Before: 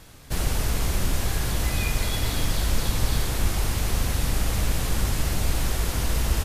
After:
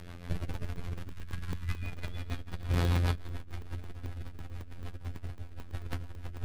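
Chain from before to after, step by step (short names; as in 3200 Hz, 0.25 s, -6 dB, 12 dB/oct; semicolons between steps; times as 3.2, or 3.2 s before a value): tone controls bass +2 dB, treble -15 dB; robotiser 87 Hz; 1.09–1.83 inverse Chebyshev band-stop 310–680 Hz, stop band 40 dB; on a send: diffused feedback echo 0.493 s, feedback 58%, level -15 dB; on the sum: rotary speaker horn 6.7 Hz; in parallel at -4.5 dB: soft clip -26.5 dBFS, distortion -8 dB; 2.69–3.15 on the sum: HPF 59 Hz 6 dB/oct; negative-ratio compressor -27 dBFS, ratio -0.5; crackling interface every 0.11 s, samples 64, zero, from 0.43; gain -5.5 dB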